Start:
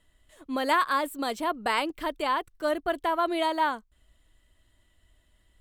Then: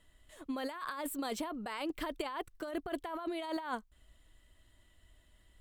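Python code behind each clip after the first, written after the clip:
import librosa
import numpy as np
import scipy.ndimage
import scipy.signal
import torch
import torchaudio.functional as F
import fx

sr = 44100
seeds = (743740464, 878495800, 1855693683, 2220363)

y = fx.over_compress(x, sr, threshold_db=-33.0, ratio=-1.0)
y = y * 10.0 ** (-5.5 / 20.0)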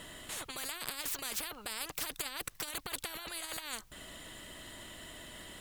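y = fx.spectral_comp(x, sr, ratio=10.0)
y = y * 10.0 ** (5.5 / 20.0)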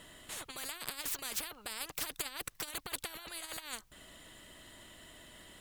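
y = fx.upward_expand(x, sr, threshold_db=-48.0, expansion=1.5)
y = y * 10.0 ** (1.0 / 20.0)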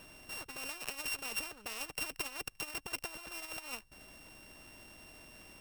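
y = np.r_[np.sort(x[:len(x) // 16 * 16].reshape(-1, 16), axis=1).ravel(), x[len(x) // 16 * 16:]]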